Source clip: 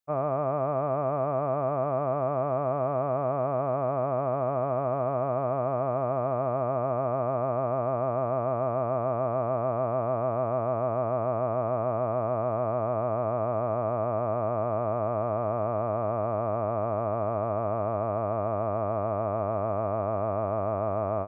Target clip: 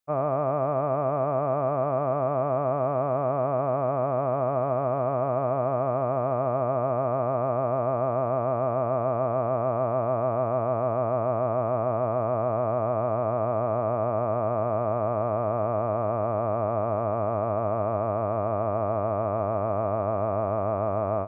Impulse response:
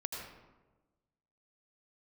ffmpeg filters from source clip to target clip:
-filter_complex "[0:a]asplit=2[a][b];[1:a]atrim=start_sample=2205,atrim=end_sample=4410[c];[b][c]afir=irnorm=-1:irlink=0,volume=-9.5dB[d];[a][d]amix=inputs=2:normalize=0"

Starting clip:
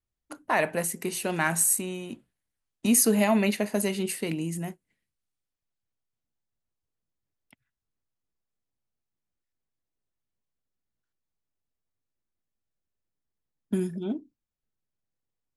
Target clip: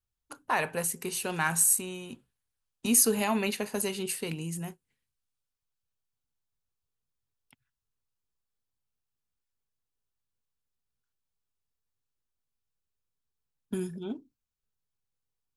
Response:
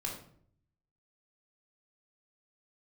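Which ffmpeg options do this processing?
-af "equalizer=f=200:t=o:w=0.33:g=-8,equalizer=f=315:t=o:w=0.33:g=-10,equalizer=f=630:t=o:w=0.33:g=-10,equalizer=f=2k:t=o:w=0.33:g=-7"

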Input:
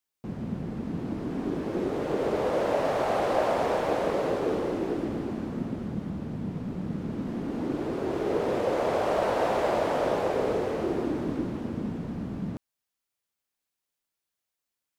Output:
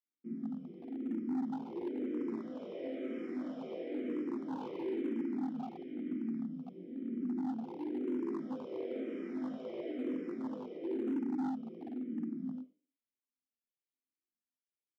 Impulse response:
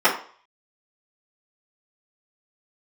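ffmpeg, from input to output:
-filter_complex "[0:a]aecho=1:1:62|124|186|248:0.224|0.0806|0.029|0.0104,flanger=delay=16.5:depth=5:speed=0.5,asplit=3[a][b][c];[a]bandpass=f=270:t=q:w=8,volume=0dB[d];[b]bandpass=f=2.29k:t=q:w=8,volume=-6dB[e];[c]bandpass=f=3.01k:t=q:w=8,volume=-9dB[f];[d][e][f]amix=inputs=3:normalize=0,asetnsamples=n=441:p=0,asendcmd='4.6 equalizer g -4;6.43 equalizer g -14.5',equalizer=f=2.2k:w=0.52:g=-13.5[g];[1:a]atrim=start_sample=2205,afade=t=out:st=0.21:d=0.01,atrim=end_sample=9702[h];[g][h]afir=irnorm=-1:irlink=0,volume=22.5dB,asoftclip=hard,volume=-22.5dB,highpass=170,asplit=2[i][j];[j]afreqshift=-1[k];[i][k]amix=inputs=2:normalize=1,volume=-7dB"

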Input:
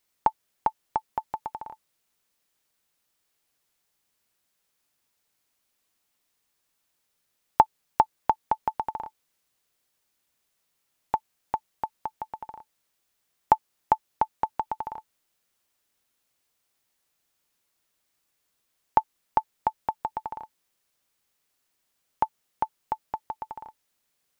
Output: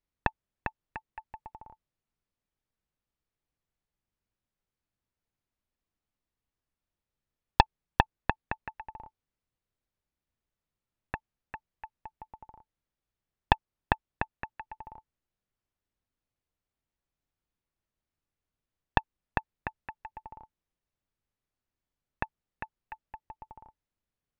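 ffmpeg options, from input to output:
-af "aemphasis=mode=reproduction:type=riaa,aeval=exprs='1.19*(cos(1*acos(clip(val(0)/1.19,-1,1)))-cos(1*PI/2))+0.237*(cos(7*acos(clip(val(0)/1.19,-1,1)))-cos(7*PI/2))':c=same,volume=-3.5dB"

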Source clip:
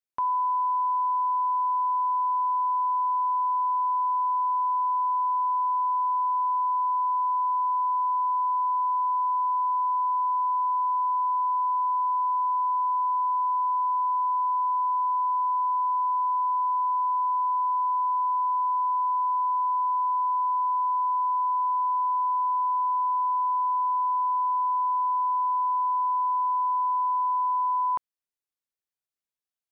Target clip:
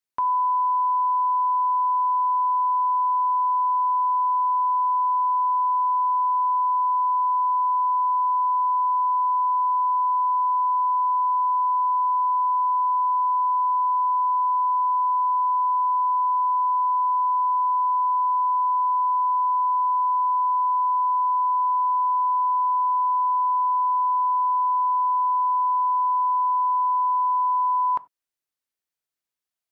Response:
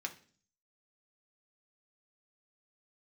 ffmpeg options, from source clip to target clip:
-filter_complex "[0:a]asplit=2[a][b];[1:a]atrim=start_sample=2205,afade=t=out:st=0.13:d=0.01,atrim=end_sample=6174,asetrate=36603,aresample=44100[c];[b][c]afir=irnorm=-1:irlink=0,volume=-10dB[d];[a][d]amix=inputs=2:normalize=0,volume=1.5dB"

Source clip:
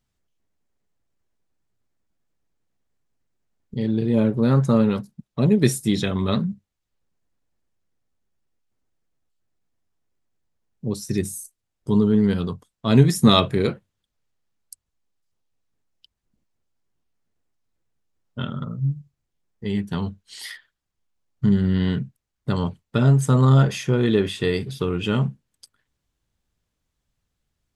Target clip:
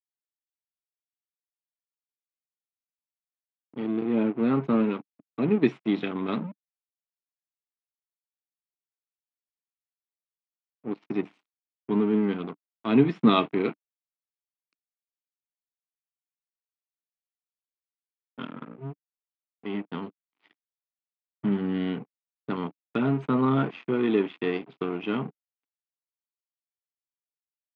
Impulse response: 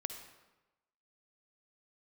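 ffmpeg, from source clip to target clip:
-af "aeval=exprs='sgn(val(0))*max(abs(val(0))-0.0282,0)':c=same,highpass=f=190:w=0.5412,highpass=f=190:w=1.3066,equalizer=f=200:t=q:w=4:g=-3,equalizer=f=290:t=q:w=4:g=5,equalizer=f=550:t=q:w=4:g=-8,equalizer=f=1.7k:t=q:w=4:g=-5,equalizer=f=2.4k:t=q:w=4:g=3,lowpass=f=2.8k:w=0.5412,lowpass=f=2.8k:w=1.3066,agate=range=-7dB:threshold=-48dB:ratio=16:detection=peak,volume=-1.5dB"

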